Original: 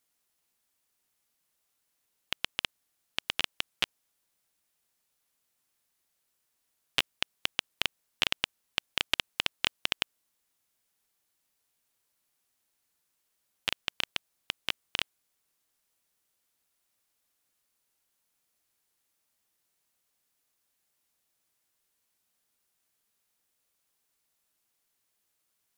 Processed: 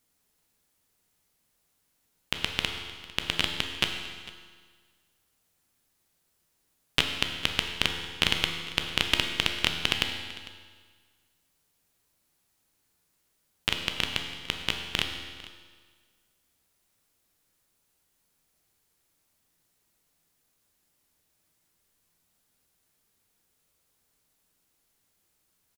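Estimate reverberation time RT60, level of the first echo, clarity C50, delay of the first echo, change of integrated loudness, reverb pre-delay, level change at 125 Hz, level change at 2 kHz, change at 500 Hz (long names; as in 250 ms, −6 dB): 1.7 s, −20.0 dB, 5.5 dB, 451 ms, +4.5 dB, 12 ms, +13.5 dB, +4.5 dB, +7.0 dB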